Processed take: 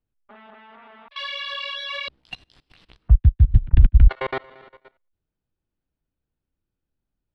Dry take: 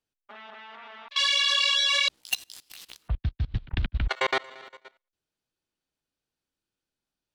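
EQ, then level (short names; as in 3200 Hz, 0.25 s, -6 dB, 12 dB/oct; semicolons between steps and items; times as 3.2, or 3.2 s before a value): air absorption 87 m; RIAA curve playback; bell 6600 Hz -10 dB 0.41 oct; -1.0 dB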